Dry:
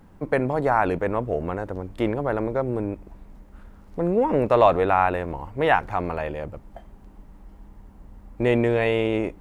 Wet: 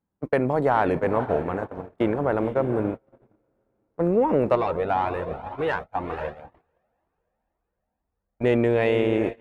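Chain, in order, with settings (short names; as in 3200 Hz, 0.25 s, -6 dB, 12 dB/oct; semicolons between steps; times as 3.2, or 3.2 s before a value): soft clip -8.5 dBFS, distortion -21 dB; diffused feedback echo 0.502 s, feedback 48%, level -10 dB; compressor 1.5:1, threshold -39 dBFS, peak gain reduction 9 dB; high shelf 2200 Hz -5.5 dB; gate -32 dBFS, range -38 dB; HPF 93 Hz 6 dB/oct; 4.55–8.44 cascading flanger rising 2 Hz; gain +9 dB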